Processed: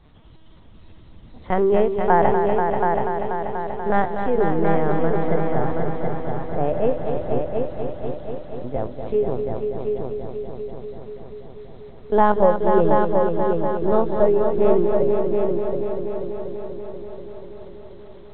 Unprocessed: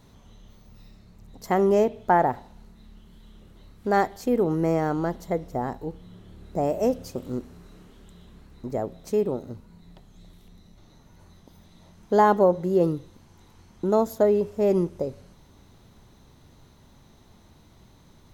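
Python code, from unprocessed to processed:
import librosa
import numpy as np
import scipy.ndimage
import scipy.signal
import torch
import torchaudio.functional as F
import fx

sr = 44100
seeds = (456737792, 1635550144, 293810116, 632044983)

y = fx.lpc_vocoder(x, sr, seeds[0], excitation='pitch_kept', order=10)
y = fx.echo_heads(y, sr, ms=242, heads='all three', feedback_pct=62, wet_db=-7.5)
y = y * 10.0 ** (2.5 / 20.0)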